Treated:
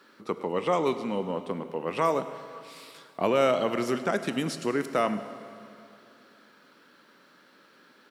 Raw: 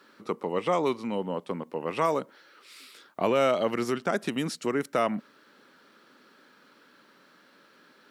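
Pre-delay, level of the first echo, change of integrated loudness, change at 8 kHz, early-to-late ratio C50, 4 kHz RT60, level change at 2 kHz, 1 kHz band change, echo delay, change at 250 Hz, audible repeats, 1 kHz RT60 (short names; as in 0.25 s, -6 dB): 5 ms, -19.0 dB, +0.5 dB, +0.5 dB, 11.0 dB, 2.4 s, +0.5 dB, +0.5 dB, 0.103 s, +0.5 dB, 1, 2.5 s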